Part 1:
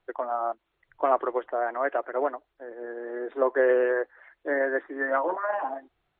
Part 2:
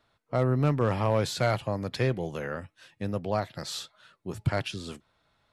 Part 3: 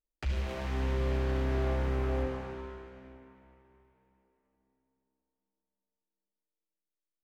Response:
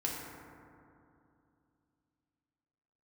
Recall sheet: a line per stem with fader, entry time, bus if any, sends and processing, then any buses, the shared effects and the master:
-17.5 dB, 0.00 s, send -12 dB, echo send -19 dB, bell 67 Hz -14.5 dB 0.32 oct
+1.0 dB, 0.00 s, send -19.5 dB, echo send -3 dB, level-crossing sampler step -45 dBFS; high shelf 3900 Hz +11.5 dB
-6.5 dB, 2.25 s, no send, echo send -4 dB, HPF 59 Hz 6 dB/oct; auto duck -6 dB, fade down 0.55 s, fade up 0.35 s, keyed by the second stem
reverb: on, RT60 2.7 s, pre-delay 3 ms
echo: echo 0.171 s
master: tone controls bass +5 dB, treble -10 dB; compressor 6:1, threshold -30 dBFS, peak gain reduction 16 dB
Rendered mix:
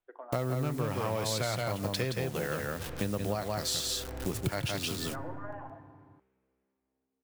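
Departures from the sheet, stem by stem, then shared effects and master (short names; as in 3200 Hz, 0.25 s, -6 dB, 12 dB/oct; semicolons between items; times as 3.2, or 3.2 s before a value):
stem 2 +1.0 dB -> +9.0 dB; master: missing tone controls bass +5 dB, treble -10 dB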